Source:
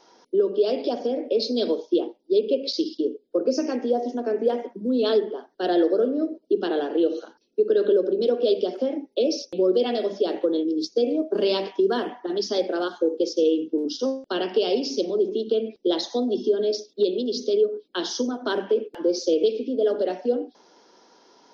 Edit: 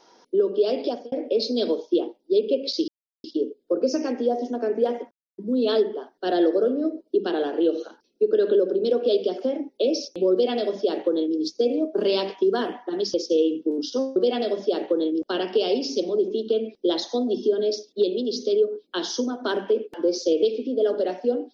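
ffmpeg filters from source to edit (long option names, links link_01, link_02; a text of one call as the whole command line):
ffmpeg -i in.wav -filter_complex "[0:a]asplit=7[link_01][link_02][link_03][link_04][link_05][link_06][link_07];[link_01]atrim=end=1.12,asetpts=PTS-STARTPTS,afade=type=out:start_time=0.87:duration=0.25[link_08];[link_02]atrim=start=1.12:end=2.88,asetpts=PTS-STARTPTS,afade=type=in:duration=0.004:curve=hsin,afade=type=out:start_time=1.756:duration=0.004:curve=hsin,apad=pad_dur=0.36[link_09];[link_03]atrim=start=2.88:end=4.75,asetpts=PTS-STARTPTS,afade=type=in:duration=0.004:curve=hsin,afade=type=out:start_time=1.866:duration=0.004:curve=hsin,apad=pad_dur=0.27[link_10];[link_04]atrim=start=4.75:end=12.512,asetpts=PTS-STARTPTS,afade=type=in:duration=0.004:curve=hsin[link_11];[link_05]atrim=start=13.208:end=14.232[link_12];[link_06]atrim=start=9.688:end=10.752[link_13];[link_07]atrim=start=14.228[link_14];[link_08][link_09][link_10][link_11]concat=n=4:v=0:a=1[link_15];[link_15][link_12]acrossfade=duration=0.004:curve1=hsin:curve2=hsin[link_16];[link_16][link_13]acrossfade=duration=0.004:curve1=hsin:curve2=hsin[link_17];[link_17][link_14]acrossfade=duration=0.004:curve1=hsin:curve2=hsin" out.wav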